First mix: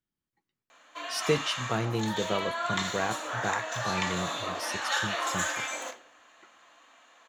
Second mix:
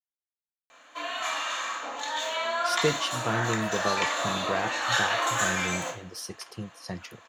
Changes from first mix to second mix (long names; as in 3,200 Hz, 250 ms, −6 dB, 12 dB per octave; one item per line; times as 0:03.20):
speech: entry +1.55 s
background: send +7.5 dB